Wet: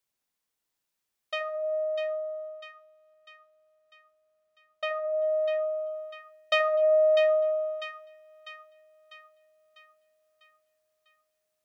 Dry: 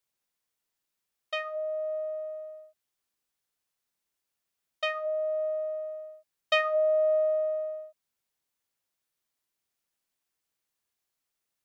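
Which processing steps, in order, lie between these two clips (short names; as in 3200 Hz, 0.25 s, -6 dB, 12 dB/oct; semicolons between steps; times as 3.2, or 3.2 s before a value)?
1.84–5.24 high shelf 3200 Hz -9.5 dB; split-band echo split 1100 Hz, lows 80 ms, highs 0.648 s, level -7 dB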